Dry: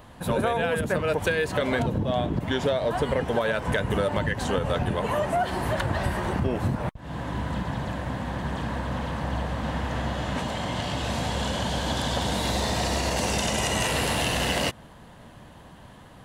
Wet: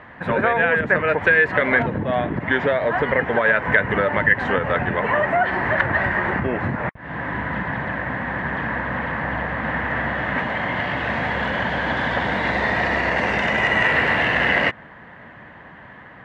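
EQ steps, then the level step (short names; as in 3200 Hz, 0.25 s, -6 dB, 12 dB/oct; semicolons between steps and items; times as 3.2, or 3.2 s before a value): HPF 150 Hz 6 dB/oct; synth low-pass 1900 Hz, resonance Q 4.2; +4.0 dB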